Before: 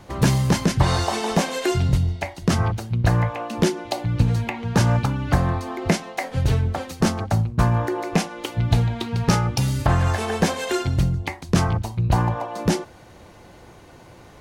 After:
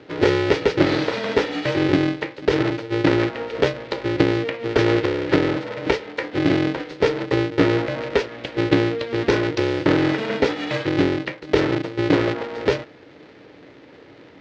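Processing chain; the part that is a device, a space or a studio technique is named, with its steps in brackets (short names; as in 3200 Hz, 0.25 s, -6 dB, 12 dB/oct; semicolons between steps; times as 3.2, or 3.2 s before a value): ring modulator pedal into a guitar cabinet (polarity switched at an audio rate 230 Hz; speaker cabinet 110–4500 Hz, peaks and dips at 150 Hz -3 dB, 280 Hz +7 dB, 460 Hz +8 dB, 750 Hz -5 dB, 1100 Hz -7 dB, 2000 Hz +4 dB); gain -1 dB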